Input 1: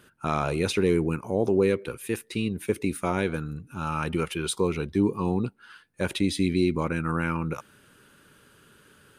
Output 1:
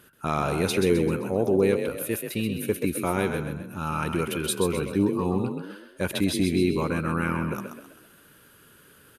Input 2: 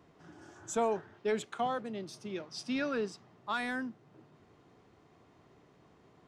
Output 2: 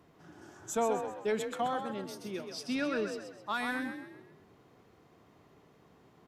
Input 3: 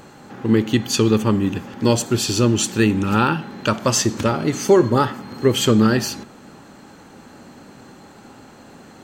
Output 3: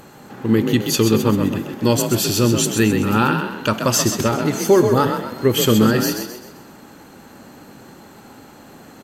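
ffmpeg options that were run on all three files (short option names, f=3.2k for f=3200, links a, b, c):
-filter_complex "[0:a]equalizer=f=12k:w=2.9:g=14.5,asplit=2[a][b];[b]asplit=5[c][d][e][f][g];[c]adelay=130,afreqshift=38,volume=-7dB[h];[d]adelay=260,afreqshift=76,volume=-14.7dB[i];[e]adelay=390,afreqshift=114,volume=-22.5dB[j];[f]adelay=520,afreqshift=152,volume=-30.2dB[k];[g]adelay=650,afreqshift=190,volume=-38dB[l];[h][i][j][k][l]amix=inputs=5:normalize=0[m];[a][m]amix=inputs=2:normalize=0"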